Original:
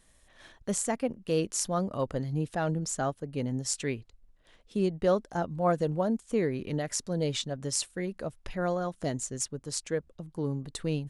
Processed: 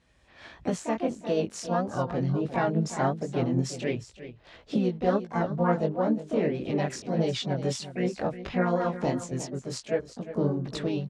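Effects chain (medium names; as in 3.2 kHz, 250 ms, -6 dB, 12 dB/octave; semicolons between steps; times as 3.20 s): recorder AGC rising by 15 dB/s; high-pass 55 Hz 12 dB/octave; chorus 1.5 Hz, delay 16 ms, depth 7.3 ms; delay 356 ms -13 dB; harmony voices +5 st -6 dB; distance through air 130 m; trim +3 dB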